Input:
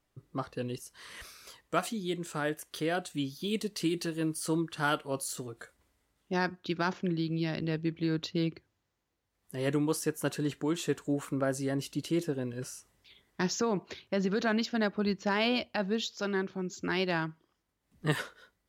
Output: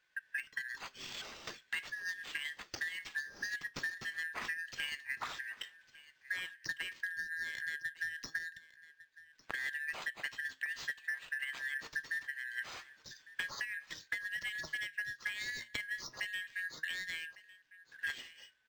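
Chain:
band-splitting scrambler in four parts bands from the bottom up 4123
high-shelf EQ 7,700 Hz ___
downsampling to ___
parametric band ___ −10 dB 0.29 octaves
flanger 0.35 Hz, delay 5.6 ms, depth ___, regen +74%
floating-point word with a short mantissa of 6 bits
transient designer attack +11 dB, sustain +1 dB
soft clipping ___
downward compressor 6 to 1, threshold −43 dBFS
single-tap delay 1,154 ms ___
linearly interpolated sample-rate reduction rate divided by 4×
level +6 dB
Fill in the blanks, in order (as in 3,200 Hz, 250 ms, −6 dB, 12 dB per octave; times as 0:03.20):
+10 dB, 22,050 Hz, 740 Hz, 3.1 ms, −19 dBFS, −19 dB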